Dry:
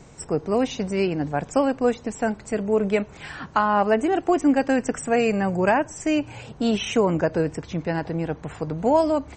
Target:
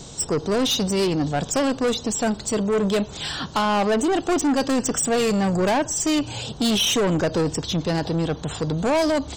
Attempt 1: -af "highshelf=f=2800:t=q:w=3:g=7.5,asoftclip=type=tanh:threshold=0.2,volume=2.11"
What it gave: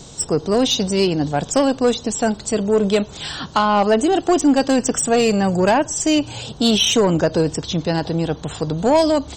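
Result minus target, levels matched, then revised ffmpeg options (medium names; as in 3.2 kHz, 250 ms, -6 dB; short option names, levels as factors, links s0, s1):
saturation: distortion -10 dB
-af "highshelf=f=2800:t=q:w=3:g=7.5,asoftclip=type=tanh:threshold=0.0668,volume=2.11"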